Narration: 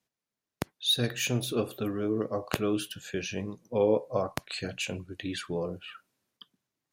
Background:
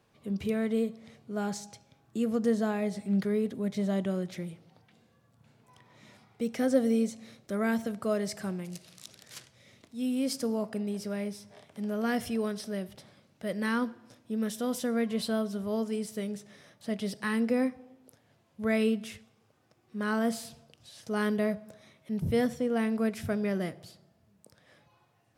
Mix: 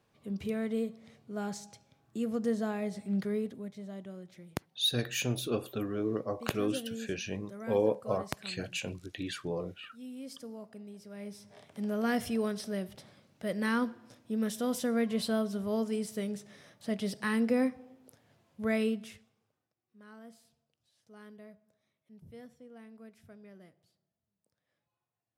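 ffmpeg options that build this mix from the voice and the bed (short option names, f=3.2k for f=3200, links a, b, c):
-filter_complex "[0:a]adelay=3950,volume=-3dB[a];[1:a]volume=9.5dB,afade=t=out:st=3.37:d=0.38:silence=0.316228,afade=t=in:st=11.1:d=0.57:silence=0.211349,afade=t=out:st=18.44:d=1.29:silence=0.0749894[b];[a][b]amix=inputs=2:normalize=0"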